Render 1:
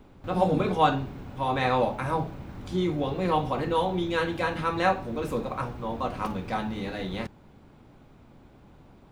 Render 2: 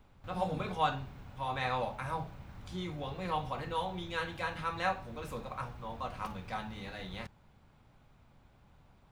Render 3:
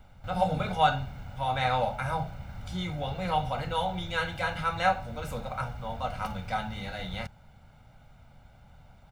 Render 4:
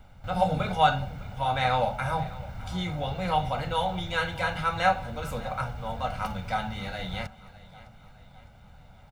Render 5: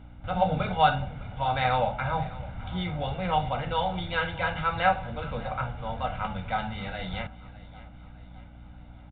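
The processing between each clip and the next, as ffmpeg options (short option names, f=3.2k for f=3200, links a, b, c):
-af "equalizer=f=320:t=o:w=1.5:g=-11,volume=-6dB"
-af "aecho=1:1:1.4:0.61,volume=5dB"
-af "aecho=1:1:608|1216|1824|2432:0.112|0.0572|0.0292|0.0149,volume=2dB"
-af "aeval=exprs='val(0)+0.00501*(sin(2*PI*60*n/s)+sin(2*PI*2*60*n/s)/2+sin(2*PI*3*60*n/s)/3+sin(2*PI*4*60*n/s)/4+sin(2*PI*5*60*n/s)/5)':c=same,aresample=8000,aresample=44100"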